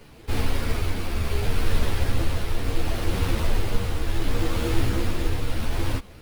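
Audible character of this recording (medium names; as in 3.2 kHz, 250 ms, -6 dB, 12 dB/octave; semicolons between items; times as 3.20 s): aliases and images of a low sample rate 7 kHz, jitter 0%; tremolo triangle 0.69 Hz, depth 40%; a shimmering, thickened sound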